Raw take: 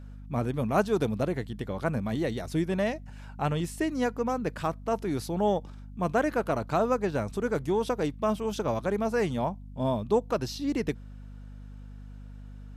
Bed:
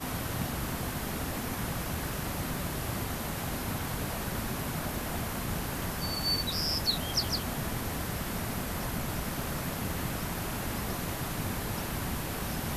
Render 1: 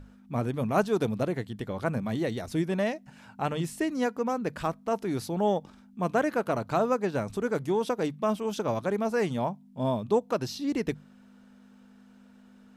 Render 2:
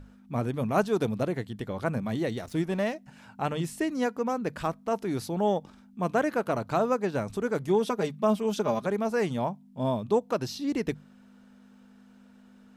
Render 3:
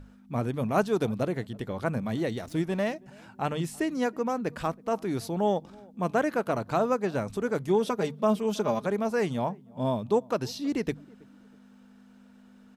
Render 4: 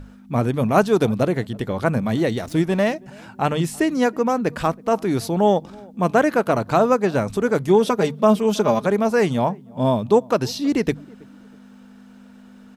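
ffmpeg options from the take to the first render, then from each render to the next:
-af "bandreject=f=50:t=h:w=6,bandreject=f=100:t=h:w=6,bandreject=f=150:t=h:w=6"
-filter_complex "[0:a]asettb=1/sr,asplit=3[s0][s1][s2];[s0]atrim=end=2.384[s3];[s1]atrim=start=2.38:end=2.95,asetpts=PTS-STARTPTS,afade=t=in:d=0.004:c=qsin,afade=t=out:st=0.566:d=0.004:c=qsin,aeval=exprs='sgn(val(0))*max(abs(val(0))-0.00376,0)':c=same[s4];[s2]atrim=start=2.946[s5];[s3][s4]acrossfade=d=0.004:c1=hsin:c2=qsin[s6];[s6][s5]acrossfade=d=0.004:c1=qsin:c2=hsin,asettb=1/sr,asplit=3[s7][s8][s9];[s7]atrim=end=7.674[s10];[s8]atrim=start=7.67:end=8.87,asetpts=PTS-STARTPTS,afade=t=in:d=0.004:c=qsin,afade=t=out:st=1.196:d=0.004:c=qsin,aecho=1:1:4.9:0.61,atrim=end_sample=52920[s11];[s9]atrim=start=8.866[s12];[s10][s11]acrossfade=d=0.004:c1=hsin:c2=qsin[s13];[s13][s12]acrossfade=d=0.004:c1=qsin:c2=hsin"
-filter_complex "[0:a]asplit=2[s0][s1];[s1]adelay=324,lowpass=f=950:p=1,volume=0.0631,asplit=2[s2][s3];[s3]adelay=324,lowpass=f=950:p=1,volume=0.37[s4];[s0][s2][s4]amix=inputs=3:normalize=0"
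-af "volume=2.82,alimiter=limit=0.708:level=0:latency=1"

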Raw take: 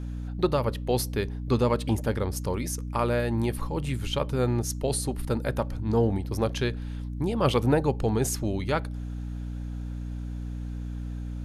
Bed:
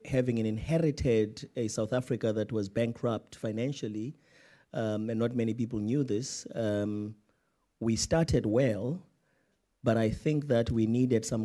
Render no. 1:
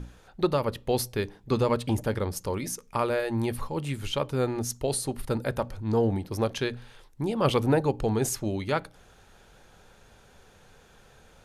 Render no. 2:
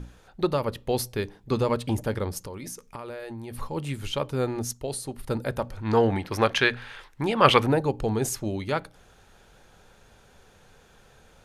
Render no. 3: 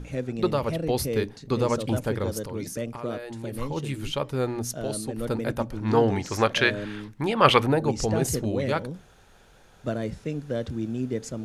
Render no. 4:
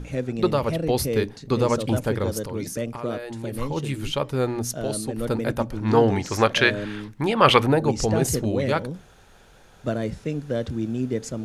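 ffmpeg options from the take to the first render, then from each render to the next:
-af "bandreject=f=60:t=h:w=6,bandreject=f=120:t=h:w=6,bandreject=f=180:t=h:w=6,bandreject=f=240:t=h:w=6,bandreject=f=300:t=h:w=6"
-filter_complex "[0:a]asettb=1/sr,asplit=3[s0][s1][s2];[s0]atrim=end=2.414[s3];[s1]atrim=start=2.41:end=3.59,asetpts=PTS-STARTPTS,afade=t=in:d=0.004:c=qsin,afade=t=out:st=1.176:d=0.004:c=qsin,acompressor=threshold=0.0224:ratio=12:attack=3.2:release=140:knee=1:detection=peak[s4];[s2]atrim=start=3.586[s5];[s3][s4]acrossfade=d=0.004:c1=hsin:c2=qsin[s6];[s6][s5]acrossfade=d=0.004:c1=qsin:c2=hsin,asettb=1/sr,asplit=3[s7][s8][s9];[s7]atrim=end=5.774[s10];[s8]atrim=start=5.77:end=7.67,asetpts=PTS-STARTPTS,afade=t=in:d=0.004:c=qsin,afade=t=out:st=1.896:d=0.004:c=qsin,equalizer=f=1800:w=0.52:g=14.5[s11];[s9]atrim=start=7.666[s12];[s10][s11]acrossfade=d=0.004:c1=hsin:c2=qsin[s13];[s13][s12]acrossfade=d=0.004:c1=qsin:c2=hsin,asplit=3[s14][s15][s16];[s14]atrim=end=4.732[s17];[s15]atrim=start=4.728:end=5.262,asetpts=PTS-STARTPTS,volume=0.631[s18];[s16]atrim=start=5.258[s19];[s17][s18]acrossfade=d=0.004:c1=hsin:c2=hsin[s20];[s20][s19]acrossfade=d=0.004:c1=hsin:c2=hsin"
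-filter_complex "[1:a]volume=0.75[s0];[0:a][s0]amix=inputs=2:normalize=0"
-af "volume=1.41,alimiter=limit=0.891:level=0:latency=1"

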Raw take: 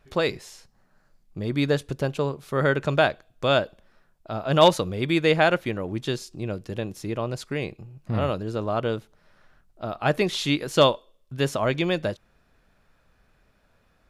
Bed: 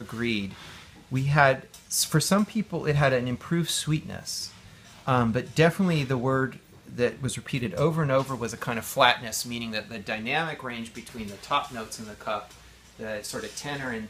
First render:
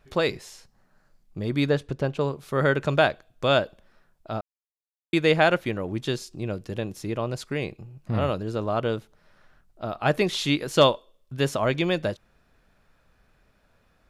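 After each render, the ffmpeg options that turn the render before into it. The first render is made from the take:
-filter_complex "[0:a]asettb=1/sr,asplit=3[s0][s1][s2];[s0]atrim=end=1.694[s3];[s1]atrim=start=1.69:end=2.21,asetpts=PTS-STARTPTS,afade=t=in:d=0.004:c=qsin,afade=t=out:st=0.516:d=0.004:c=qsin,aemphasis=mode=reproduction:type=50kf[s4];[s2]atrim=start=2.206[s5];[s3][s4]acrossfade=d=0.004:c1=hsin:c2=qsin[s6];[s6][s5]acrossfade=d=0.004:c1=qsin:c2=hsin,asplit=3[s7][s8][s9];[s7]atrim=end=4.41,asetpts=PTS-STARTPTS,afade=t=out:st=4.406:d=0.004:c=hsin[s10];[s8]atrim=start=4.41:end=5.13,asetpts=PTS-STARTPTS,volume=0[s11];[s9]atrim=start=5.13,asetpts=PTS-STARTPTS,afade=t=in:d=0.004:c=hsin[s12];[s10][s11][s12]concat=n=3:v=0:a=1"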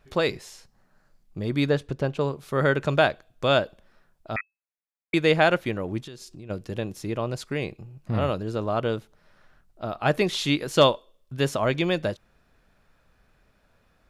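-filter_complex "[0:a]asettb=1/sr,asplit=3[s0][s1][s2];[s0]atrim=end=4.364[s3];[s1]atrim=start=4.36:end=5.14,asetpts=PTS-STARTPTS,afade=t=in:d=0.004:c=qsin,afade=t=out:st=0.776:d=0.004:c=qsin,lowpass=f=2200:t=q:w=0.5098,lowpass=f=2200:t=q:w=0.6013,lowpass=f=2200:t=q:w=0.9,lowpass=f=2200:t=q:w=2.563,afreqshift=-2600[s4];[s2]atrim=start=5.136[s5];[s3][s4]acrossfade=d=0.004:c1=hsin:c2=qsin[s6];[s6][s5]acrossfade=d=0.004:c1=qsin:c2=hsin,asplit=3[s7][s8][s9];[s7]afade=t=out:st=6.02:d=0.02[s10];[s8]acompressor=threshold=0.0126:ratio=6:attack=3.2:release=140:knee=1:detection=peak,afade=t=in:st=6.02:d=0.02,afade=t=out:st=6.49:d=0.02[s11];[s9]afade=t=in:st=6.49:d=0.02[s12];[s10][s11][s12]amix=inputs=3:normalize=0"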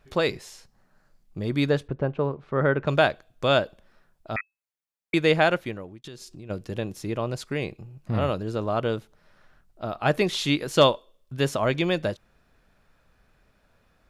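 -filter_complex "[0:a]asettb=1/sr,asplit=3[s0][s1][s2];[s0]atrim=end=1.884[s3];[s1]atrim=start=1.88:end=2.87,asetpts=PTS-STARTPTS,afade=t=in:d=0.004:c=qsin,afade=t=out:st=0.986:d=0.004:c=qsin,lowpass=1800[s4];[s2]atrim=start=2.866[s5];[s3][s4]acrossfade=d=0.004:c1=hsin:c2=qsin[s6];[s6][s5]acrossfade=d=0.004:c1=qsin:c2=hsin,asplit=2[s7][s8];[s7]atrim=end=6.04,asetpts=PTS-STARTPTS,afade=t=out:st=5.2:d=0.84:c=qsin[s9];[s8]atrim=start=6.04,asetpts=PTS-STARTPTS,afade=t=in:d=0.004:c=hsin[s10];[s9][s10]concat=n=2:v=0:a=1"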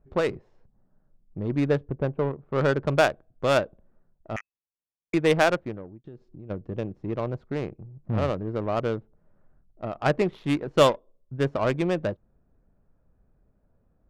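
-af "adynamicsmooth=sensitivity=1:basefreq=590"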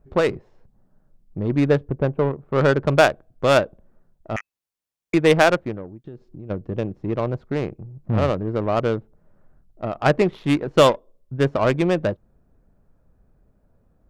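-af "volume=1.88,alimiter=limit=0.708:level=0:latency=1"

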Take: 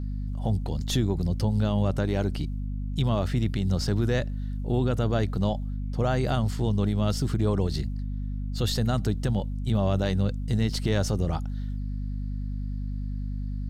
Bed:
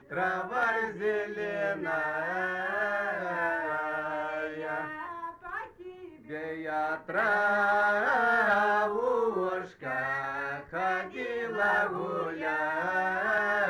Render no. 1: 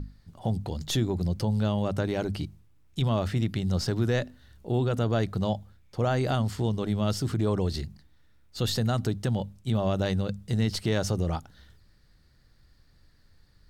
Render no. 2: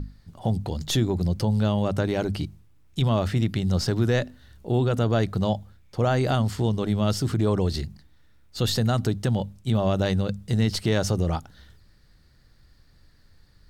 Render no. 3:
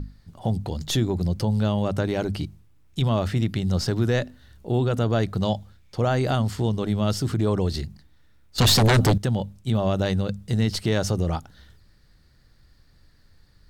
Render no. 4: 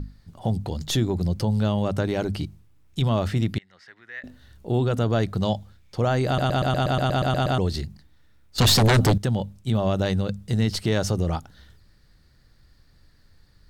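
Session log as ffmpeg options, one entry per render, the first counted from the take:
-af "bandreject=f=50:t=h:w=6,bandreject=f=100:t=h:w=6,bandreject=f=150:t=h:w=6,bandreject=f=200:t=h:w=6,bandreject=f=250:t=h:w=6"
-af "volume=1.5"
-filter_complex "[0:a]asettb=1/sr,asplit=3[s0][s1][s2];[s0]atrim=end=5.424[s3];[s1]atrim=start=5.42:end=6,asetpts=PTS-STARTPTS,afade=t=in:d=0.004:c=qsin,afade=t=out:st=0.576:d=0.004:c=qsin,equalizer=f=4400:t=o:w=2:g=4.5[s4];[s2]atrim=start=5.996[s5];[s3][s4]acrossfade=d=0.004:c1=hsin:c2=qsin[s6];[s6][s5]acrossfade=d=0.004:c1=qsin:c2=hsin,asettb=1/sr,asplit=3[s7][s8][s9];[s7]atrim=end=8.584[s10];[s8]atrim=start=8.58:end=9.18,asetpts=PTS-STARTPTS,afade=t=in:d=0.004:c=qsin,afade=t=out:st=0.596:d=0.004:c=qsin,aeval=exprs='0.224*sin(PI/2*2.51*val(0)/0.224)':c=same[s11];[s9]atrim=start=9.176[s12];[s10][s11]acrossfade=d=0.004:c1=hsin:c2=qsin[s13];[s13][s12]acrossfade=d=0.004:c1=qsin:c2=hsin"
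-filter_complex "[0:a]asettb=1/sr,asplit=3[s0][s1][s2];[s0]atrim=end=3.584[s3];[s1]atrim=start=3.58:end=4.24,asetpts=PTS-STARTPTS,afade=t=in:d=0.004:c=qsin,afade=t=out:st=0.656:d=0.004:c=qsin,bandpass=f=1900:t=q:w=7.1[s4];[s2]atrim=start=4.236[s5];[s3][s4]acrossfade=d=0.004:c1=hsin:c2=qsin[s6];[s6][s5]acrossfade=d=0.004:c1=qsin:c2=hsin,asplit=12[s7][s8][s9][s10][s11][s12][s13][s14][s15][s16][s17][s18];[s7]atrim=end=6.382[s19];[s8]atrim=start=6.258:end=6.382[s20];[s9]atrim=start=6.258:end=6.382[s21];[s10]atrim=start=6.258:end=6.382[s22];[s11]atrim=start=6.258:end=6.382[s23];[s12]atrim=start=6.258:end=6.382[s24];[s13]atrim=start=6.258:end=6.382[s25];[s14]atrim=start=6.258:end=6.382[s26];[s15]atrim=start=6.258:end=6.382[s27];[s16]atrim=start=6.258:end=6.382[s28];[s17]atrim=start=6.258:end=6.382[s29];[s18]atrim=start=7.578[s30];[s19][s20]acrossfade=d=0.004:c1=hsin:c2=hsin[s31];[s31][s21]acrossfade=d=0.004:c1=hsin:c2=hsin[s32];[s32][s22]acrossfade=d=0.004:c1=hsin:c2=hsin[s33];[s33][s23]acrossfade=d=0.004:c1=hsin:c2=hsin[s34];[s34][s24]acrossfade=d=0.004:c1=hsin:c2=hsin[s35];[s35][s25]acrossfade=d=0.004:c1=hsin:c2=hsin[s36];[s36][s26]acrossfade=d=0.004:c1=hsin:c2=hsin[s37];[s37][s27]acrossfade=d=0.004:c1=hsin:c2=hsin[s38];[s38][s28]acrossfade=d=0.004:c1=hsin:c2=hsin[s39];[s39][s29]acrossfade=d=0.004:c1=hsin:c2=hsin[s40];[s40][s30]acrossfade=d=0.004:c1=hsin:c2=hsin"

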